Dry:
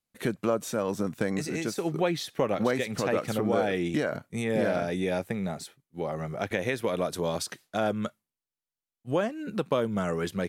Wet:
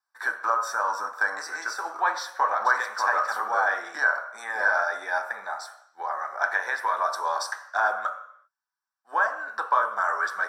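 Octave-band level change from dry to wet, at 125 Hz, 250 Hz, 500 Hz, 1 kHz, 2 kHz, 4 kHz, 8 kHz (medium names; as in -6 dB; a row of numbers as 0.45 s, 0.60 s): under -35 dB, -25.0 dB, -6.5 dB, +11.0 dB, +12.5 dB, -1.5 dB, -0.5 dB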